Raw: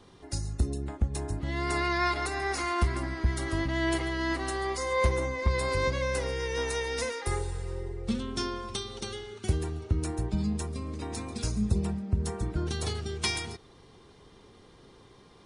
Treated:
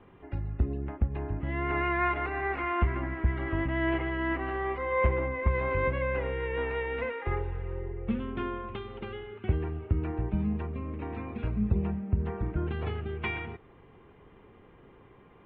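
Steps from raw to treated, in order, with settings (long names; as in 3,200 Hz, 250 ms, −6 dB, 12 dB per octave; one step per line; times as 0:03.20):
Butterworth low-pass 2,800 Hz 48 dB per octave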